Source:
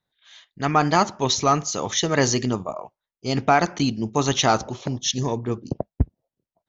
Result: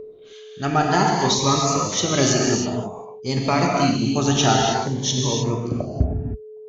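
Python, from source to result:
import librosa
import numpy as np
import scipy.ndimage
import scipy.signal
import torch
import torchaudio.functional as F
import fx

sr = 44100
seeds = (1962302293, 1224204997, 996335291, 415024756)

y = x + 10.0 ** (-29.0 / 20.0) * np.sin(2.0 * np.pi * 430.0 * np.arange(len(x)) / sr)
y = fx.rev_gated(y, sr, seeds[0], gate_ms=340, shape='flat', drr_db=-1.5)
y = fx.notch_cascade(y, sr, direction='rising', hz=0.54)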